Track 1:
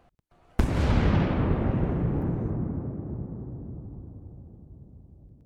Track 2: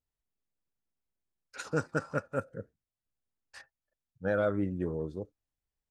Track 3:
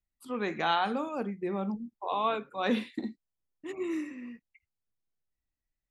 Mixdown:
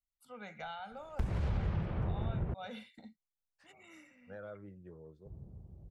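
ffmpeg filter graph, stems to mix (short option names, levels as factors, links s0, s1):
-filter_complex "[0:a]adelay=600,volume=0.841,asplit=3[s0][s1][s2];[s0]atrim=end=2.54,asetpts=PTS-STARTPTS,afade=t=out:st=2.536:d=0.004:c=hsin[s3];[s1]atrim=start=2.54:end=5.25,asetpts=PTS-STARTPTS,volume=0[s4];[s2]atrim=start=5.25,asetpts=PTS-STARTPTS,afade=t=in:d=0.004:c=hsin[s5];[s3][s4][s5]concat=n=3:v=0:a=1[s6];[1:a]agate=range=0.447:threshold=0.00158:ratio=16:detection=peak,adelay=50,volume=0.141[s7];[2:a]aecho=1:1:1.4:0.92,volume=0.211[s8];[s6][s7]amix=inputs=2:normalize=0,highshelf=f=4600:g=-5.5,alimiter=limit=0.0708:level=0:latency=1:release=227,volume=1[s9];[s8][s9]amix=inputs=2:normalize=0,equalizer=f=270:t=o:w=0.32:g=-12,acrossover=split=150[s10][s11];[s11]acompressor=threshold=0.00891:ratio=5[s12];[s10][s12]amix=inputs=2:normalize=0"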